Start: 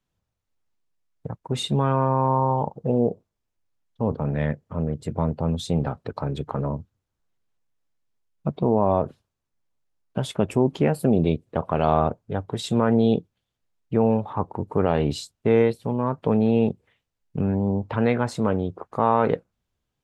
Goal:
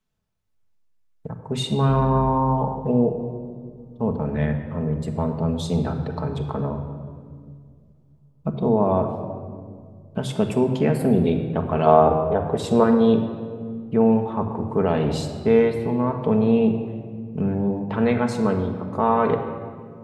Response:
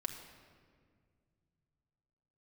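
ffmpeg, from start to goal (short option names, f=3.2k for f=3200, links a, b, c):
-filter_complex "[0:a]asettb=1/sr,asplit=3[a][b][c];[a]atrim=end=1.894[d];[b]atrim=start=1.89:end=2.29,asetpts=PTS-STARTPTS,afade=t=in:d=0.004:c=qsin,afade=t=out:st=0.396:d=0.004:c=qsin,aeval=exprs='val(0)+0.0282*(sin(2*PI*50*n/s)+sin(2*PI*2*50*n/s)/2+sin(2*PI*3*50*n/s)/3+sin(2*PI*4*50*n/s)/4+sin(2*PI*5*50*n/s)/5)':c=same[e];[c]atrim=start=2.286[f];[d][e]acrossfade=d=0.004:c1=hsin:c2=qsin[g];[g][f]acrossfade=d=0.004:c1=qsin:c2=hsin,asettb=1/sr,asplit=3[h][i][j];[h]atrim=end=11.864[k];[i]atrim=start=11.86:end=12.84,asetpts=PTS-STARTPTS,afade=t=in:d=0.004:c=qsin,afade=t=out:st=0.976:d=0.004:c=qsin,equalizer=f=500:t=o:w=1:g=8,equalizer=f=1k:t=o:w=1:g=4,equalizer=f=4k:t=o:w=1:g=-4[l];[j]atrim=start=12.836[m];[k][l]acrossfade=d=0.004:c1=hsin:c2=qsin[n];[n][m]acrossfade=d=0.004:c1=qsin:c2=hsin[o];[1:a]atrim=start_sample=2205[p];[o][p]afir=irnorm=-1:irlink=0,volume=1dB"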